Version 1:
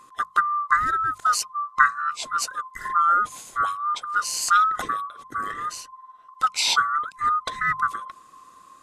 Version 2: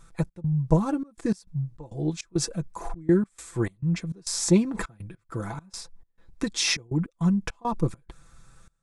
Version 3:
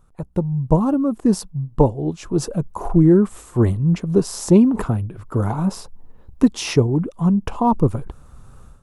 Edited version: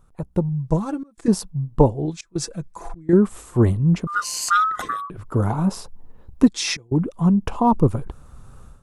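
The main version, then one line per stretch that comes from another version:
3
0.49–1.28 from 2
2.06–3.13 from 2
4.07–5.1 from 1
6.48–6.92 from 2

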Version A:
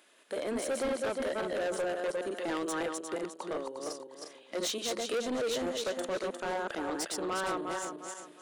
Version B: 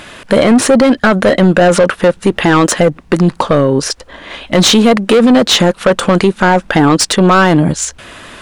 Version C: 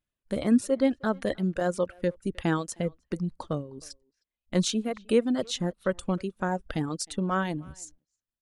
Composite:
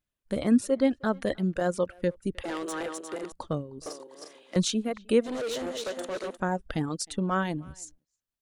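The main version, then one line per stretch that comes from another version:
C
2.44–3.32 from A
3.86–4.56 from A
5.26–6.35 from A, crossfade 0.06 s
not used: B

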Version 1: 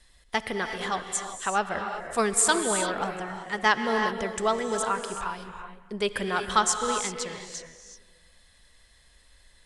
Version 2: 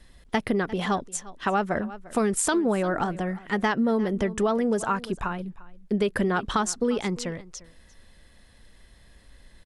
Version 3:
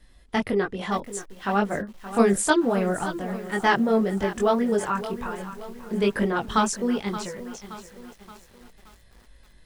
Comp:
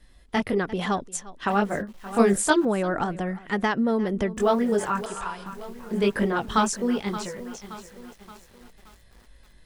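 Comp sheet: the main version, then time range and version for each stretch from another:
3
0.58–1.5 from 2
2.65–4.37 from 2
5.06–5.46 from 1

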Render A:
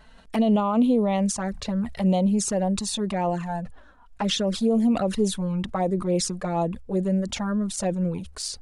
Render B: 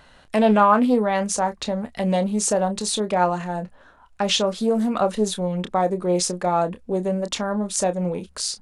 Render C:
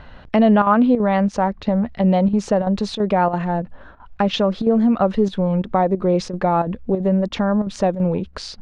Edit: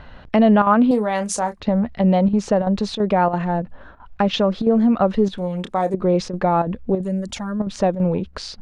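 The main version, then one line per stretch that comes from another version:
C
0.91–1.6 from B
5.38–5.94 from B
7.01–7.6 from A

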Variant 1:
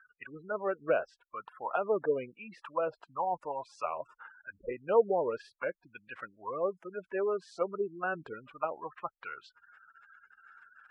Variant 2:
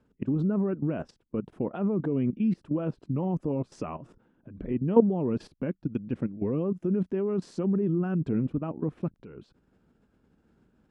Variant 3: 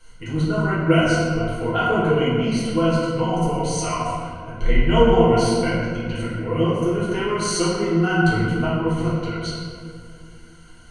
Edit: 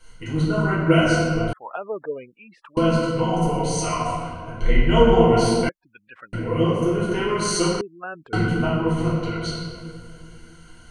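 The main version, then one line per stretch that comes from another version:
3
1.53–2.77 from 1
5.69–6.33 from 1
7.81–8.33 from 1
not used: 2

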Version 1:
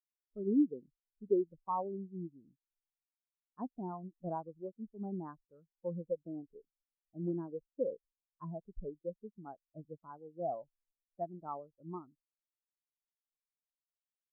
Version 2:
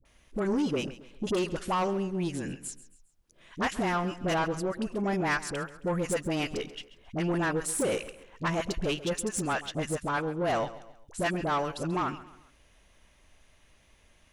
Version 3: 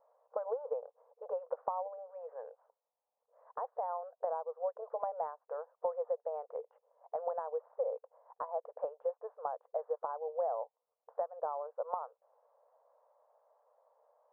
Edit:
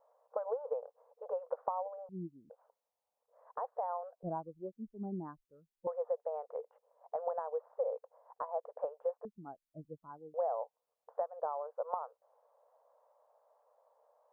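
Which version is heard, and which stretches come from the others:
3
2.09–2.5 from 1
4.23–5.87 from 1
9.25–10.34 from 1
not used: 2

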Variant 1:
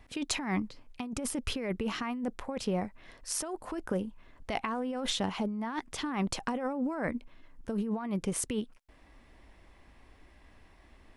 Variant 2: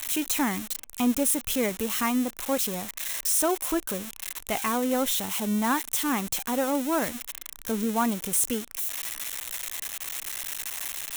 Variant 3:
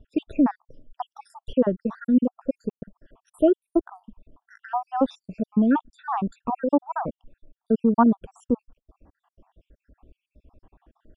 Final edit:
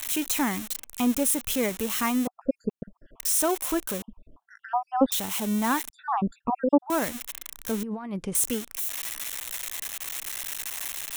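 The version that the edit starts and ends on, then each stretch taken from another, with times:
2
2.27–3.2 from 3
4.02–5.12 from 3
5.9–6.9 from 3
7.83–8.35 from 1

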